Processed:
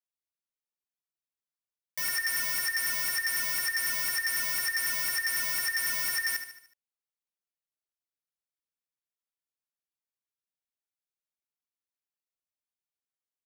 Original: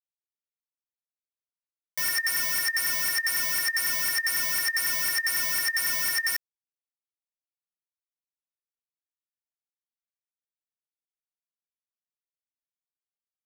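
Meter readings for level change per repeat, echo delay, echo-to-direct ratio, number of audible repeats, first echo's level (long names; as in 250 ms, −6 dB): −6.0 dB, 74 ms, −8.5 dB, 5, −9.5 dB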